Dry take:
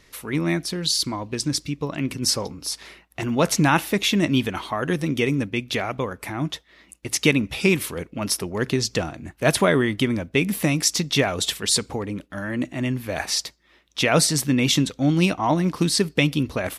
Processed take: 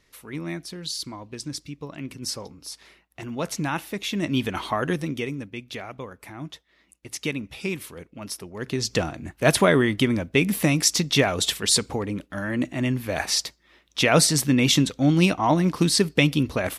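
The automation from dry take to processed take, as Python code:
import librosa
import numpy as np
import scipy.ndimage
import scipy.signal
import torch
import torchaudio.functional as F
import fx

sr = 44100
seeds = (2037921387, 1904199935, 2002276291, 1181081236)

y = fx.gain(x, sr, db=fx.line((4.02, -9.0), (4.7, 2.0), (5.38, -10.0), (8.55, -10.0), (8.95, 0.5)))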